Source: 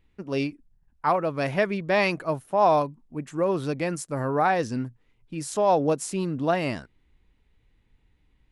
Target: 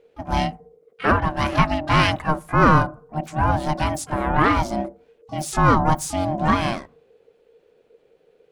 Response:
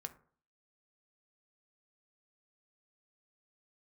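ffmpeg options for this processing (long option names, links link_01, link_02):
-filter_complex "[0:a]asplit=3[link_01][link_02][link_03];[link_02]asetrate=33038,aresample=44100,atempo=1.33484,volume=-9dB[link_04];[link_03]asetrate=88200,aresample=44100,atempo=0.5,volume=-14dB[link_05];[link_01][link_04][link_05]amix=inputs=3:normalize=0,aeval=exprs='val(0)*sin(2*PI*460*n/s)':channel_layout=same,asplit=2[link_06][link_07];[1:a]atrim=start_sample=2205,lowshelf=frequency=170:gain=7[link_08];[link_07][link_08]afir=irnorm=-1:irlink=0,volume=-6.5dB[link_09];[link_06][link_09]amix=inputs=2:normalize=0,volume=4.5dB"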